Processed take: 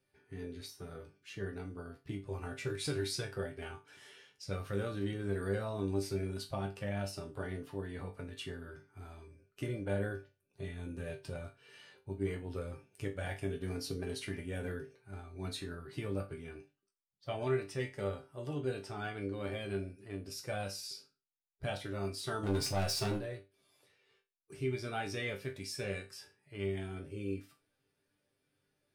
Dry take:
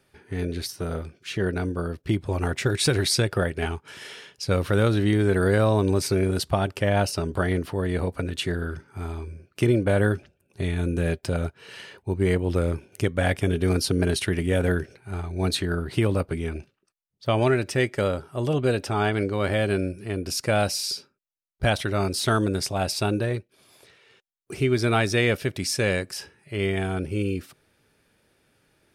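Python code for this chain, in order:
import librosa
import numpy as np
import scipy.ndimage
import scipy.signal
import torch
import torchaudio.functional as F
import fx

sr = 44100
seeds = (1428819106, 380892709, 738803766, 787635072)

y = fx.spec_quant(x, sr, step_db=15)
y = fx.leveller(y, sr, passes=3, at=(22.43, 23.18))
y = fx.resonator_bank(y, sr, root=43, chord='sus4', decay_s=0.26)
y = y * 10.0 ** (-3.0 / 20.0)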